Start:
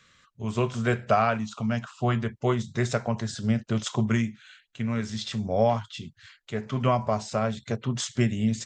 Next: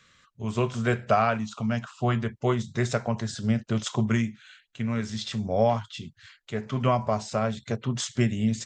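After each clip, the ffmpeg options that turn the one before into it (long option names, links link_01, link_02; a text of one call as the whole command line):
ffmpeg -i in.wav -af anull out.wav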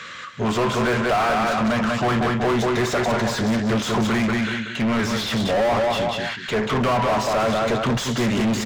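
ffmpeg -i in.wav -filter_complex "[0:a]aecho=1:1:187|374|561:0.398|0.107|0.029,asplit=2[link_01][link_02];[link_02]highpass=frequency=720:poles=1,volume=39dB,asoftclip=type=tanh:threshold=-9dB[link_03];[link_01][link_03]amix=inputs=2:normalize=0,lowpass=frequency=1700:poles=1,volume=-6dB,volume=-3.5dB" out.wav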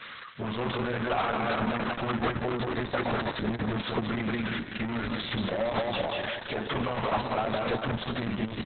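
ffmpeg -i in.wav -af "aecho=1:1:495:0.316,volume=-7.5dB" -ar 48000 -c:a libopus -b:a 6k out.opus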